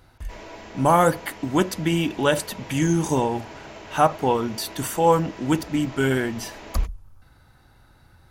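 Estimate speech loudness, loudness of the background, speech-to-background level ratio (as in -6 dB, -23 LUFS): -23.0 LUFS, -41.0 LUFS, 18.0 dB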